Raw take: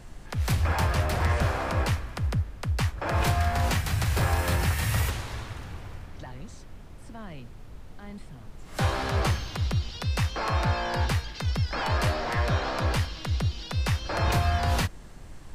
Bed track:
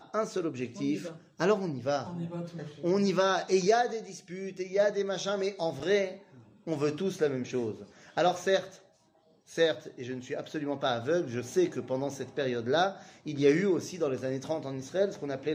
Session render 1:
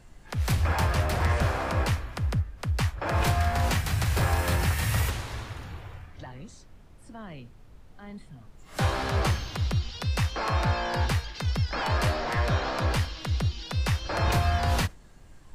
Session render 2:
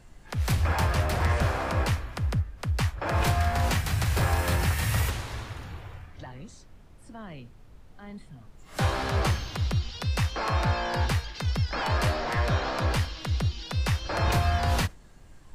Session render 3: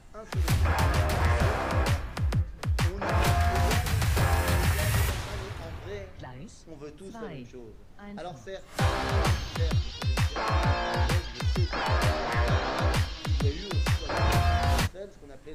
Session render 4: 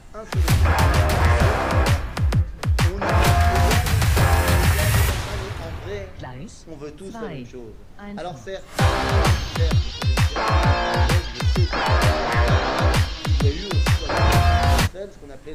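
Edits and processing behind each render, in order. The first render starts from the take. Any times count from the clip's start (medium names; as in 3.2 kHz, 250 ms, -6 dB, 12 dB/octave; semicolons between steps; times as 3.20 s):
noise print and reduce 7 dB
no audible change
add bed track -13.5 dB
trim +7.5 dB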